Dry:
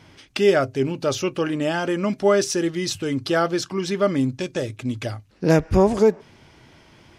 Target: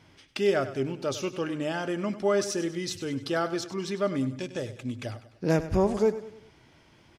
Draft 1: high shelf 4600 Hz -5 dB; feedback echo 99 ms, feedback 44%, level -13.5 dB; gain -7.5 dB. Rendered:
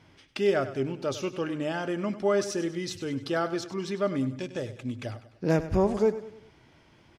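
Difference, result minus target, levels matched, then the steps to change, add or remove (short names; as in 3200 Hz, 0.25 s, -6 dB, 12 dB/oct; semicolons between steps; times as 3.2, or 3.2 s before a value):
8000 Hz band -3.0 dB
remove: high shelf 4600 Hz -5 dB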